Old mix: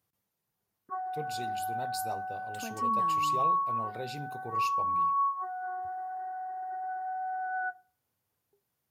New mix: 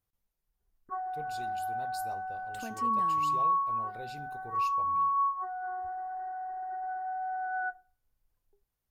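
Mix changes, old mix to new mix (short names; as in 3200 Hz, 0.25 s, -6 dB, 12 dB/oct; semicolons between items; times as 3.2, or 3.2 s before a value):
speech -6.5 dB; master: remove HPF 100 Hz 24 dB/oct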